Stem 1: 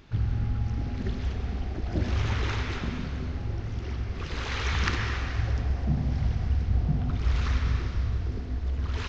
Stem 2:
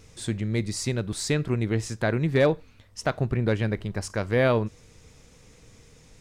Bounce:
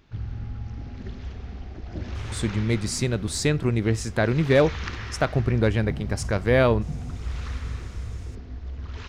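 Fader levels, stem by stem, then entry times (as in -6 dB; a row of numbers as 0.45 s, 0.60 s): -5.5 dB, +2.5 dB; 0.00 s, 2.15 s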